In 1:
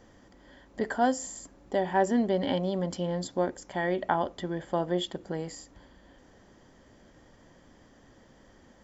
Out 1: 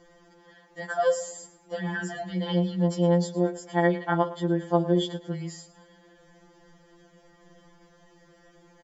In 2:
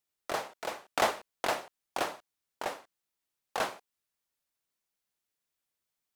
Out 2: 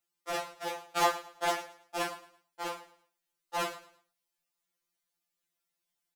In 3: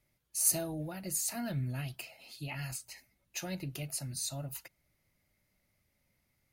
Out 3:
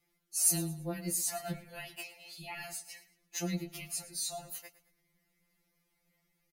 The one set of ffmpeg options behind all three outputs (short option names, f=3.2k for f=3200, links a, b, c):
-af "aecho=1:1:110|220|330:0.141|0.048|0.0163,afftfilt=real='re*2.83*eq(mod(b,8),0)':imag='im*2.83*eq(mod(b,8),0)':win_size=2048:overlap=0.75,volume=3dB"